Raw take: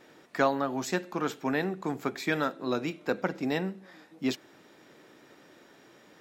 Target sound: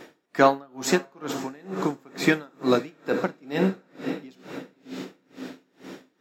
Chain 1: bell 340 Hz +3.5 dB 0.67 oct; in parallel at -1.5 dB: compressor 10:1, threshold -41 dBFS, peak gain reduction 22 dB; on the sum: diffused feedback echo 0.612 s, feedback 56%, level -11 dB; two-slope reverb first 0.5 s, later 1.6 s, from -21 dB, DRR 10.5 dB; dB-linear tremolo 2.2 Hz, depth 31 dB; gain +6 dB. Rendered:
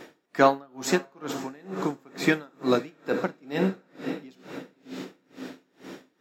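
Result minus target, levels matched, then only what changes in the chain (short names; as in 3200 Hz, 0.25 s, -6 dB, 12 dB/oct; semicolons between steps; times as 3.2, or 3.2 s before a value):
compressor: peak gain reduction +10 dB
change: compressor 10:1, threshold -30 dBFS, peak gain reduction 12 dB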